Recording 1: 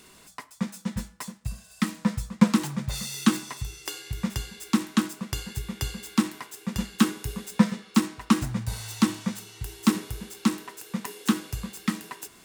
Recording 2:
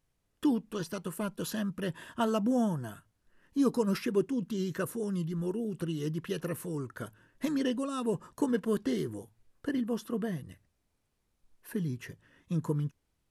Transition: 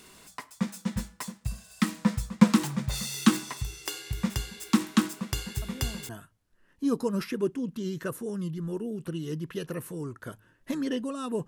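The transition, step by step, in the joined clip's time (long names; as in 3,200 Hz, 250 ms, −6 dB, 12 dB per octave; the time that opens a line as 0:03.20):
recording 1
0:05.62: mix in recording 2 from 0:02.36 0.47 s −15.5 dB
0:06.09: continue with recording 2 from 0:02.83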